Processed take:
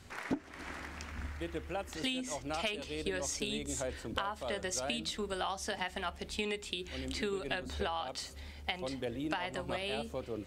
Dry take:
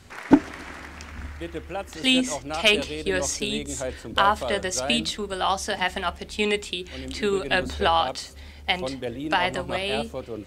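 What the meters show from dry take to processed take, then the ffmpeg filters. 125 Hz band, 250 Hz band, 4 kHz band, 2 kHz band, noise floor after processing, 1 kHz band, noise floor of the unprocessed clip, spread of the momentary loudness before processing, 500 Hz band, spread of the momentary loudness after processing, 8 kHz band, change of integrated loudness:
-8.5 dB, -13.5 dB, -13.0 dB, -13.0 dB, -50 dBFS, -14.0 dB, -43 dBFS, 15 LU, -11.0 dB, 6 LU, -9.0 dB, -13.0 dB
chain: -af "acompressor=threshold=0.0447:ratio=12,volume=0.562"

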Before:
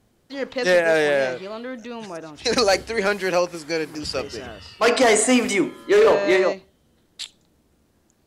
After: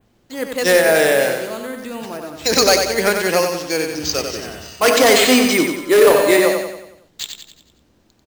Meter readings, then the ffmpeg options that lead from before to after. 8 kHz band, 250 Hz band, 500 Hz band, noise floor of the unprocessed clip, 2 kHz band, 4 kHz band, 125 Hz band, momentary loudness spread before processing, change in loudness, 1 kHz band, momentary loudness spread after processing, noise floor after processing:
+7.0 dB, +4.5 dB, +4.5 dB, -63 dBFS, +5.0 dB, +8.0 dB, +4.5 dB, 19 LU, +5.0 dB, +4.5 dB, 18 LU, -58 dBFS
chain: -af "acrusher=samples=4:mix=1:aa=0.000001,adynamicequalizer=threshold=0.0112:dfrequency=5300:dqfactor=1.1:tfrequency=5300:tqfactor=1.1:attack=5:release=100:ratio=0.375:range=3:mode=boostabove:tftype=bell,aecho=1:1:92|184|276|368|460|552:0.531|0.255|0.122|0.0587|0.0282|0.0135,volume=1.41"

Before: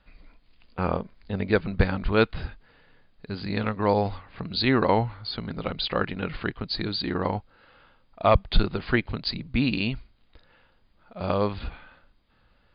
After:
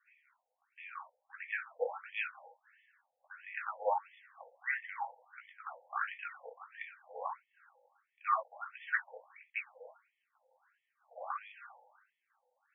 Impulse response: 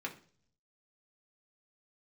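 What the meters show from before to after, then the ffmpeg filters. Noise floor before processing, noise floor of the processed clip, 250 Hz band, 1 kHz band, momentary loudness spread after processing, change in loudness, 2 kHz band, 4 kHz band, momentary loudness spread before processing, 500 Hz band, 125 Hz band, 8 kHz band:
-63 dBFS, -85 dBFS, under -40 dB, -9.0 dB, 20 LU, -13.0 dB, -7.0 dB, -27.5 dB, 13 LU, -17.5 dB, under -40 dB, no reading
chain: -filter_complex "[0:a]bass=f=250:g=12,treble=f=4000:g=-4[s0];[1:a]atrim=start_sample=2205,afade=t=out:st=0.15:d=0.01,atrim=end_sample=7056,atrim=end_sample=3969[s1];[s0][s1]afir=irnorm=-1:irlink=0,afftfilt=real='re*between(b*sr/1024,640*pow(2500/640,0.5+0.5*sin(2*PI*1.5*pts/sr))/1.41,640*pow(2500/640,0.5+0.5*sin(2*PI*1.5*pts/sr))*1.41)':imag='im*between(b*sr/1024,640*pow(2500/640,0.5+0.5*sin(2*PI*1.5*pts/sr))/1.41,640*pow(2500/640,0.5+0.5*sin(2*PI*1.5*pts/sr))*1.41)':win_size=1024:overlap=0.75,volume=0.531"

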